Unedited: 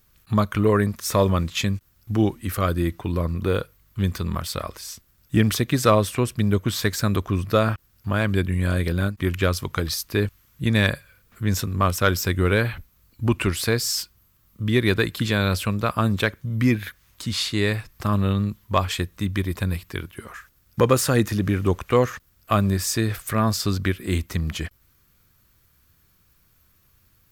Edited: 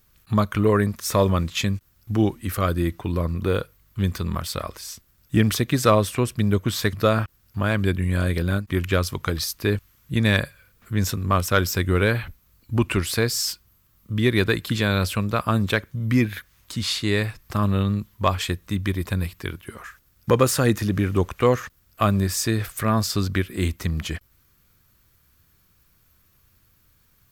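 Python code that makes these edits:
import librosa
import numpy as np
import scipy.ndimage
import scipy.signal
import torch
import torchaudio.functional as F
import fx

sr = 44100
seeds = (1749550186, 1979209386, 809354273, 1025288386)

y = fx.edit(x, sr, fx.cut(start_s=6.93, length_s=0.5), tone=tone)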